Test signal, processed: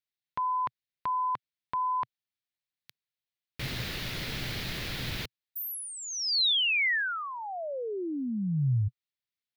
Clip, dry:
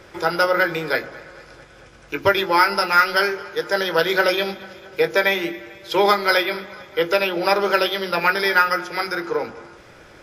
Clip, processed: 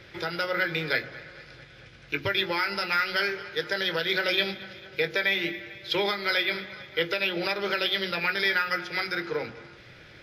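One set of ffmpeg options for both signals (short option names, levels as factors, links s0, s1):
-af "alimiter=limit=0.299:level=0:latency=1:release=201,equalizer=f=125:t=o:w=1:g=9,equalizer=f=1000:t=o:w=1:g=-6,equalizer=f=2000:t=o:w=1:g=7,equalizer=f=4000:t=o:w=1:g=10,equalizer=f=8000:t=o:w=1:g=-9,volume=0.447"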